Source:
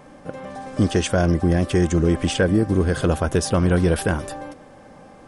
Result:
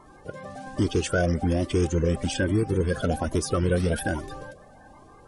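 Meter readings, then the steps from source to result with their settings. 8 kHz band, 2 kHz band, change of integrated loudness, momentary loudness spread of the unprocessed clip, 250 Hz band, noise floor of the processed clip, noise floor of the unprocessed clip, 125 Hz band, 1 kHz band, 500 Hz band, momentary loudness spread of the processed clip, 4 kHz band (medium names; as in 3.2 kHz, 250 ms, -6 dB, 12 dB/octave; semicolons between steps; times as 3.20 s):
-4.5 dB, -4.0 dB, -5.5 dB, 16 LU, -6.5 dB, -51 dBFS, -46 dBFS, -5.5 dB, -4.5 dB, -4.5 dB, 16 LU, -5.0 dB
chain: coarse spectral quantiser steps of 30 dB; Shepard-style flanger rising 1.2 Hz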